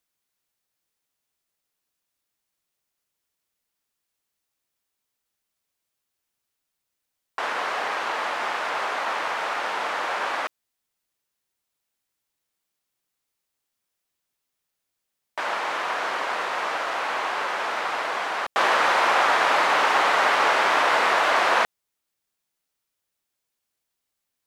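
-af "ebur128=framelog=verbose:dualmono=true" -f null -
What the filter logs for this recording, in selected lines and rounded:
Integrated loudness:
  I:         -19.8 LUFS
  Threshold: -29.9 LUFS
Loudness range:
  LRA:        14.4 LU
  Threshold: -41.7 LUFS
  LRA low:   -31.0 LUFS
  LRA high:  -16.6 LUFS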